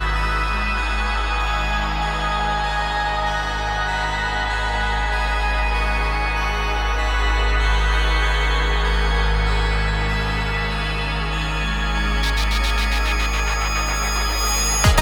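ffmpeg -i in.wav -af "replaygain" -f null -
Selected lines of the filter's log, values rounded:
track_gain = +5.4 dB
track_peak = 0.609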